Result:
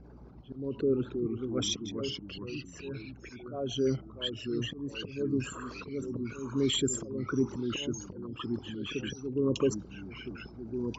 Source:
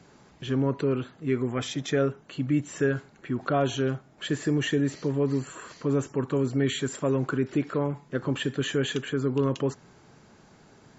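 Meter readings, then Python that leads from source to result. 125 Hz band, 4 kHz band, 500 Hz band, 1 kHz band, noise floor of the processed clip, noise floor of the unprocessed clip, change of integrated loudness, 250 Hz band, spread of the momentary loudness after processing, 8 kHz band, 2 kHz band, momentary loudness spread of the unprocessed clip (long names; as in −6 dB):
−9.0 dB, +0.5 dB, −5.5 dB, −11.0 dB, −50 dBFS, −56 dBFS, −6.0 dB, −5.5 dB, 13 LU, can't be measured, −9.0 dB, 6 LU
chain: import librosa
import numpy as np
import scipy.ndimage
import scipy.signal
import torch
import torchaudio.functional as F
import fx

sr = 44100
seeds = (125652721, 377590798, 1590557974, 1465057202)

y = fx.envelope_sharpen(x, sr, power=2.0)
y = fx.add_hum(y, sr, base_hz=60, snr_db=25)
y = fx.auto_swell(y, sr, attack_ms=442.0)
y = fx.peak_eq(y, sr, hz=5500.0, db=14.5, octaves=0.67)
y = fx.echo_pitch(y, sr, ms=215, semitones=-2, count=3, db_per_echo=-6.0)
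y = fx.peak_eq(y, sr, hz=1800.0, db=-10.5, octaves=0.23)
y = fx.env_lowpass(y, sr, base_hz=2200.0, full_db=-23.0)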